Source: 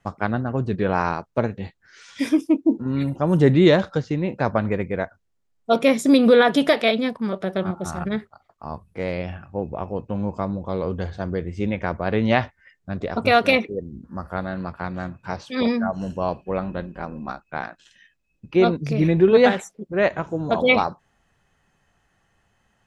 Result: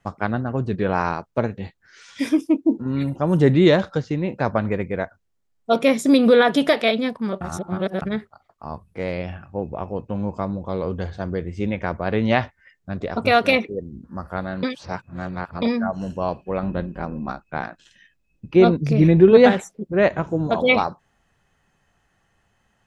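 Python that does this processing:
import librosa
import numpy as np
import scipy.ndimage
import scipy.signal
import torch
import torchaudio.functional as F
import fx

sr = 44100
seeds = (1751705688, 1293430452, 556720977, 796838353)

y = fx.low_shelf(x, sr, hz=470.0, db=5.5, at=(16.63, 20.47))
y = fx.edit(y, sr, fx.reverse_span(start_s=7.41, length_s=0.61),
    fx.reverse_span(start_s=14.63, length_s=0.99), tone=tone)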